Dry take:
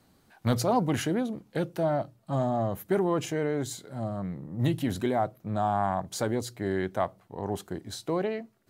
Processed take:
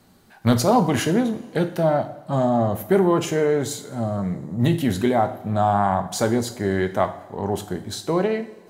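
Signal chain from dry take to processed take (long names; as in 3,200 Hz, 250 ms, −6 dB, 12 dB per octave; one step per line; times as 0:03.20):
coupled-rooms reverb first 0.51 s, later 2.4 s, from −18 dB, DRR 7 dB
level +7 dB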